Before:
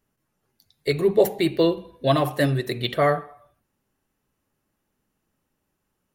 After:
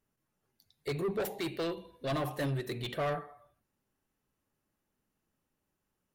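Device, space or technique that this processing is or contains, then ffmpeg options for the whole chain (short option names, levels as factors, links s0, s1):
saturation between pre-emphasis and de-emphasis: -filter_complex "[0:a]highshelf=f=3800:g=11,asoftclip=type=tanh:threshold=0.0891,highshelf=f=3800:g=-11,asettb=1/sr,asplit=3[s0][s1][s2];[s0]atrim=end=1.204[s3];[s1]atrim=start=1.2:end=2.11,asetpts=PTS-STARTPTS,afade=t=in:d=0.004:c=qsin,afade=t=out:st=0.906:d=0.004:c=qsin,tiltshelf=f=970:g=-3[s4];[s2]atrim=start=2.106[s5];[s3][s4]acrossfade=d=0.004:c1=hsin:c2=qsin[s6];[s6][s5]acrossfade=d=0.004:c1=qsin:c2=hsin,volume=0.447"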